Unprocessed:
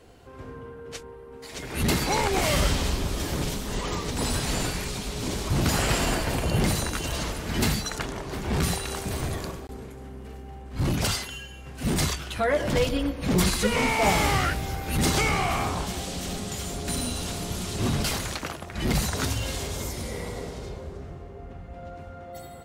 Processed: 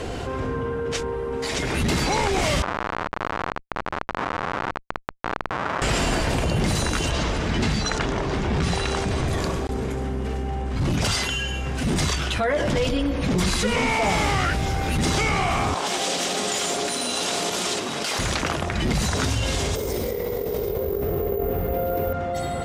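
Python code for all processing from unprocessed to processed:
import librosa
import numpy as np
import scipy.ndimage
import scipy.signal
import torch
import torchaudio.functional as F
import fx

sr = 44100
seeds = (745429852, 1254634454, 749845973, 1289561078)

y = fx.chain(x, sr, fx.schmitt(flips_db=-21.5),
    fx.bandpass_q(hz=1200.0, q=1.5), at=(2.62, 5.82))
y = fx.chain(y, sr, fx.air_absorb(metres=62.0),
    fx.quant_companded(bits=8), at=(7.1, 9.28))
y = fx.chain(y, sr, fx.over_compress(threshold_db=-33.0, ratio=-1.0),
    fx.highpass(hz=390.0, slope=12), at=(15.74, 18.19))
y = fx.chain(y, sr, fx.peak_eq(hz=440.0, db=15.0, octaves=0.66),
    fx.over_compress(threshold_db=-36.0, ratio=-1.0),
    fx.resample_bad(factor=3, down='filtered', up='zero_stuff'), at=(19.75, 22.13))
y = scipy.signal.sosfilt(scipy.signal.butter(2, 8000.0, 'lowpass', fs=sr, output='sos'), y)
y = fx.notch(y, sr, hz=4300.0, q=22.0)
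y = fx.env_flatten(y, sr, amount_pct=70)
y = F.gain(torch.from_numpy(y), -1.5).numpy()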